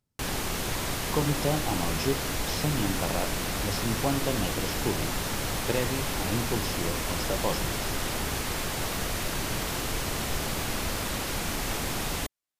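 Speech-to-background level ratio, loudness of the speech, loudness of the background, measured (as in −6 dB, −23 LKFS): −2.0 dB, −32.5 LKFS, −30.5 LKFS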